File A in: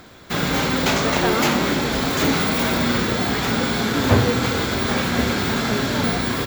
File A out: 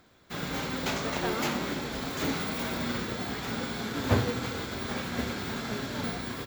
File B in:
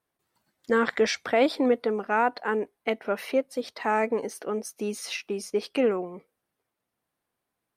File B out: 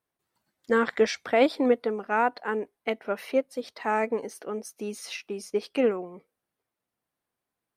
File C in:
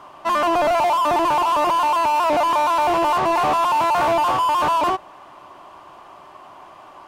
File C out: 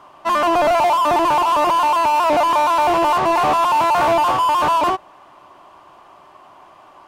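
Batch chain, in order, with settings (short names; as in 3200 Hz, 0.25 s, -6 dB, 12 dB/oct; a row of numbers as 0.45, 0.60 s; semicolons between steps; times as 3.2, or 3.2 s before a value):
upward expander 1.5:1, over -28 dBFS; normalise peaks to -9 dBFS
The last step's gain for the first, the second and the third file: -8.0, +1.5, +3.0 dB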